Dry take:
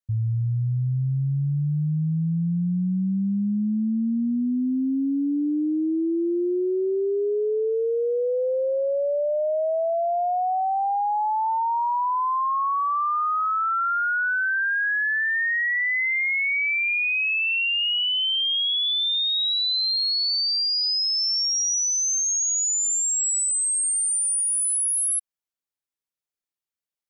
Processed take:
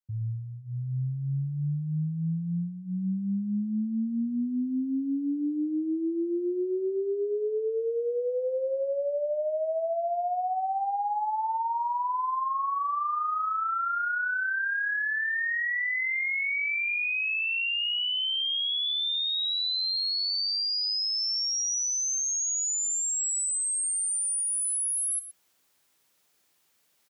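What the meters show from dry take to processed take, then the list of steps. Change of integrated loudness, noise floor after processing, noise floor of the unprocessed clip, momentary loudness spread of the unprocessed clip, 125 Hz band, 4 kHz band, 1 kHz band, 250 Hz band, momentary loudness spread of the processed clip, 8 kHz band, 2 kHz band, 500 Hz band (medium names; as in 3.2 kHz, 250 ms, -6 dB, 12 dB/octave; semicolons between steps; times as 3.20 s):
-5.5 dB, -69 dBFS, under -85 dBFS, 4 LU, -7.0 dB, -5.0 dB, -5.0 dB, -5.5 dB, 5 LU, -5.5 dB, -5.0 dB, -5.0 dB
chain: high-pass 97 Hz 12 dB/octave; hum notches 60/120/180 Hz; reverse; upward compressor, threshold -41 dBFS; reverse; echo from a far wall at 20 m, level -11 dB; trim -5.5 dB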